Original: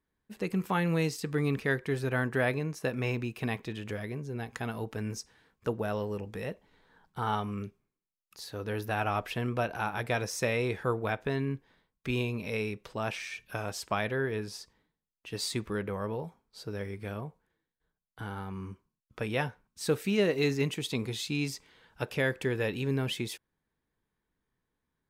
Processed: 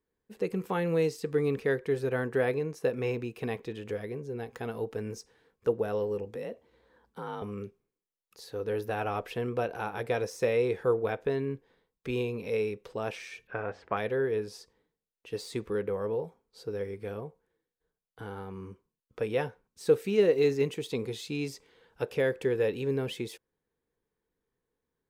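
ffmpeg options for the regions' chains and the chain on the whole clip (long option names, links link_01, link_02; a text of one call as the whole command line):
ffmpeg -i in.wav -filter_complex "[0:a]asettb=1/sr,asplit=3[link_01][link_02][link_03];[link_01]atrim=end=6.354[link_04];[link_02]atrim=start=6.35:end=7.42,asetpts=PTS-STARTPTS,afade=type=in:duration=0.004:curve=qsin,afade=type=out:start_time=1.066:duration=0.004:curve=qsin,acompressor=threshold=-37dB:ratio=2:attack=3.2:release=140:knee=1:detection=peak,afreqshift=43[link_05];[link_03]atrim=start=7.416[link_06];[link_04][link_05]acrossfade=duration=0.004:curve1=hsin:curve2=qsin[link_07];[link_07][link_06]acrossfade=duration=0.004:curve1=qsin:curve2=hsin,asettb=1/sr,asplit=3[link_08][link_09][link_10];[link_08]atrim=end=13.474[link_11];[link_09]atrim=start=13.47:end=13.97,asetpts=PTS-STARTPTS,afade=type=in:duration=0.004:curve=qsin,afade=type=out:start_time=0.496:duration=0.004:curve=qsin,lowpass=frequency=1800:width_type=q:width=2,bandreject=frequency=92.94:width_type=h:width=4,bandreject=frequency=185.88:width_type=h:width=4,bandreject=frequency=278.82:width_type=h:width=4,bandreject=frequency=371.76:width_type=h:width=4,bandreject=frequency=464.7:width_type=h:width=4,bandreject=frequency=557.64:width_type=h:width=4,bandreject=frequency=650.58:width_type=h:width=4,bandreject=frequency=743.52:width_type=h:width=4,bandreject=frequency=836.46:width_type=h:width=4[link_12];[link_10]atrim=start=13.966[link_13];[link_11][link_12]acrossfade=duration=0.004:curve1=hsin:curve2=qsin[link_14];[link_14][link_13]acrossfade=duration=0.004:curve1=qsin:curve2=hsin,bandreject=frequency=610:width=12,deesser=0.8,equalizer=frequency=470:width=1.7:gain=11.5,volume=-4.5dB" out.wav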